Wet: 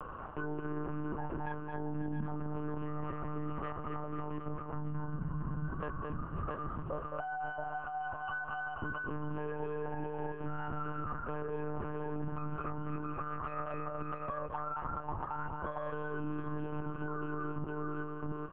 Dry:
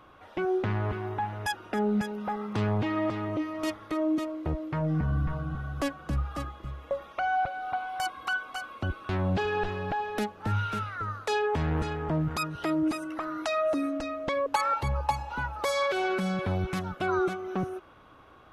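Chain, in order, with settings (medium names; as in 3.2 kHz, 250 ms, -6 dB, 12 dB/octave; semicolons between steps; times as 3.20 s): steep low-pass 2.8 kHz 72 dB/octave; static phaser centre 440 Hz, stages 8; multi-tap echo 216/245/671 ms -4/-4.5/-5.5 dB; reverse; compression 6:1, threshold -39 dBFS, peak gain reduction 16.5 dB; reverse; peaking EQ 89 Hz +11 dB 0.35 oct; on a send at -13.5 dB: elliptic band-stop 260–1600 Hz + reverberation RT60 0.70 s, pre-delay 5 ms; on the sum: monotone LPC vocoder at 8 kHz 150 Hz; three bands compressed up and down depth 70%; trim +2.5 dB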